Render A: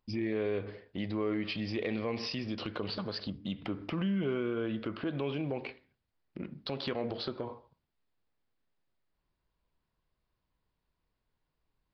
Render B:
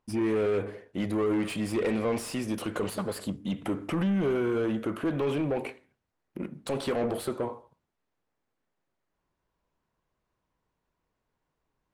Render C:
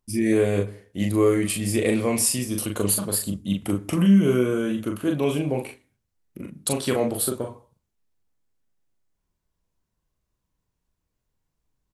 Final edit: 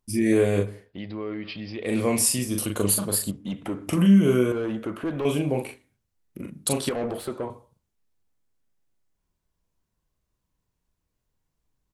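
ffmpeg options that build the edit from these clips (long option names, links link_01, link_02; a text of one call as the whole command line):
ffmpeg -i take0.wav -i take1.wav -i take2.wav -filter_complex "[1:a]asplit=3[link_01][link_02][link_03];[2:a]asplit=5[link_04][link_05][link_06][link_07][link_08];[link_04]atrim=end=0.93[link_09];[0:a]atrim=start=0.77:end=1.99[link_10];[link_05]atrim=start=1.83:end=3.312[link_11];[link_01]atrim=start=3.308:end=3.872[link_12];[link_06]atrim=start=3.868:end=4.522[link_13];[link_02]atrim=start=4.518:end=5.252[link_14];[link_07]atrim=start=5.248:end=6.892[link_15];[link_03]atrim=start=6.888:end=7.502[link_16];[link_08]atrim=start=7.498[link_17];[link_09][link_10]acrossfade=duration=0.16:curve1=tri:curve2=tri[link_18];[link_18][link_11]acrossfade=duration=0.16:curve1=tri:curve2=tri[link_19];[link_19][link_12]acrossfade=duration=0.004:curve1=hsin:curve2=hsin[link_20];[link_20][link_13]acrossfade=duration=0.004:curve1=hsin:curve2=hsin[link_21];[link_21][link_14]acrossfade=duration=0.004:curve1=hsin:curve2=hsin[link_22];[link_22][link_15]acrossfade=duration=0.004:curve1=hsin:curve2=hsin[link_23];[link_23][link_16]acrossfade=duration=0.004:curve1=hsin:curve2=hsin[link_24];[link_24][link_17]acrossfade=duration=0.004:curve1=hsin:curve2=hsin" out.wav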